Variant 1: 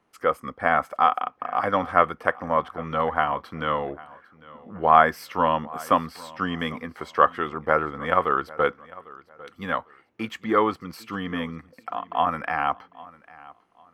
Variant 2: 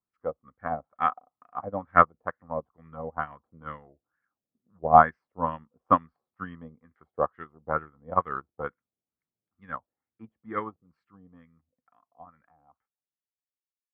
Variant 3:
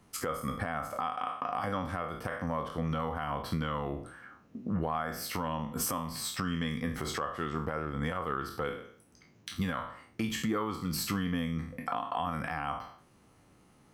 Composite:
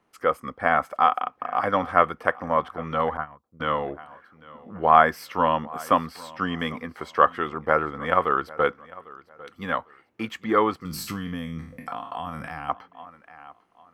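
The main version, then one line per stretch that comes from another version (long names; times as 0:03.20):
1
0:03.17–0:03.60: punch in from 2
0:10.85–0:12.69: punch in from 3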